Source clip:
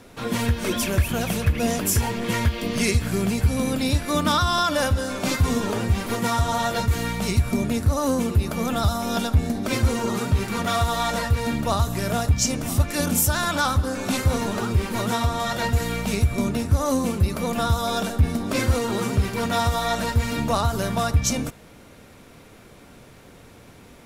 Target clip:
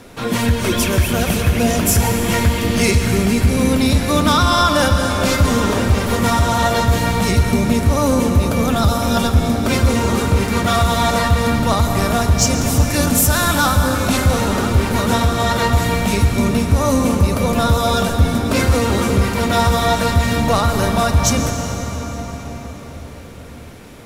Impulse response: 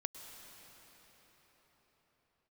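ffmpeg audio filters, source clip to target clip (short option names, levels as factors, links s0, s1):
-filter_complex "[0:a]asoftclip=type=tanh:threshold=0.237[s0];[1:a]atrim=start_sample=2205,asetrate=41013,aresample=44100[s1];[s0][s1]afir=irnorm=-1:irlink=0,volume=2.82"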